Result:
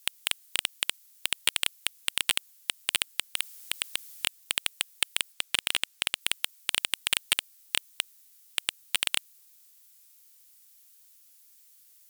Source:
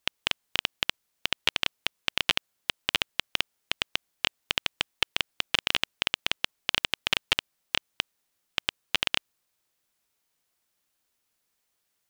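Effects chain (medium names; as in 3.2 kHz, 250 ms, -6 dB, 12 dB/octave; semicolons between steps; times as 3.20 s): differentiator; sine folder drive 13 dB, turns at -9.5 dBFS; 3.30–4.26 s: transient shaper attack -2 dB, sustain +10 dB; 5.32–6.21 s: treble shelf 8.5 kHz -6 dB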